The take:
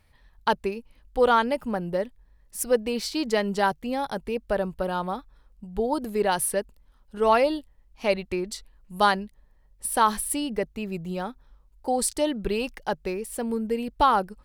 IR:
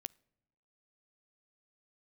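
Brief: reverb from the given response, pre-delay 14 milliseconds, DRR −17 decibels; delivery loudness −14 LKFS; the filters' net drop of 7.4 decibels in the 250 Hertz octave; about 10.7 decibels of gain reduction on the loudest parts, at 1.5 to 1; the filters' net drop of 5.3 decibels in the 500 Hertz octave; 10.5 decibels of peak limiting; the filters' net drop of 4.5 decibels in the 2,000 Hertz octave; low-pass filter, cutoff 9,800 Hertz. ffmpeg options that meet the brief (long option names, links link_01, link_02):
-filter_complex "[0:a]lowpass=9800,equalizer=frequency=250:width_type=o:gain=-8.5,equalizer=frequency=500:width_type=o:gain=-4,equalizer=frequency=2000:width_type=o:gain=-6,acompressor=threshold=-48dB:ratio=1.5,alimiter=level_in=6dB:limit=-24dB:level=0:latency=1,volume=-6dB,asplit=2[link_01][link_02];[1:a]atrim=start_sample=2205,adelay=14[link_03];[link_02][link_03]afir=irnorm=-1:irlink=0,volume=21.5dB[link_04];[link_01][link_04]amix=inputs=2:normalize=0,volume=10.5dB"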